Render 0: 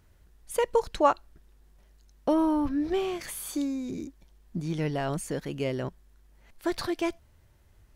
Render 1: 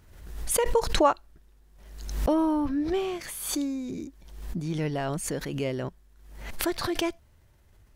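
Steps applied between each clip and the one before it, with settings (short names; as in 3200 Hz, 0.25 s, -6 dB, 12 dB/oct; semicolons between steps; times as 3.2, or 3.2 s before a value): backwards sustainer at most 60 dB/s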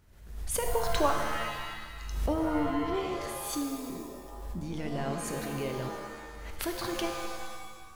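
shimmer reverb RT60 1.5 s, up +7 st, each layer -2 dB, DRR 4.5 dB; gain -6.5 dB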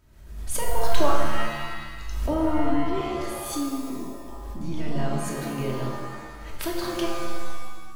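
shoebox room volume 1000 m³, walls furnished, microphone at 2.8 m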